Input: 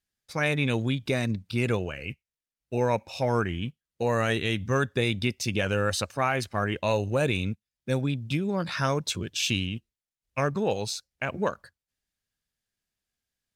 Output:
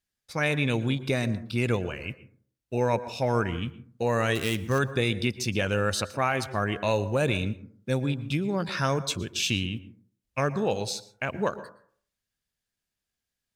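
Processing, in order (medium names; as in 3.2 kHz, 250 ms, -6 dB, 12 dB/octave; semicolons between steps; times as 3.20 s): 4.35–4.79 s: dead-time distortion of 0.073 ms; plate-style reverb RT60 0.53 s, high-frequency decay 0.3×, pre-delay 105 ms, DRR 15 dB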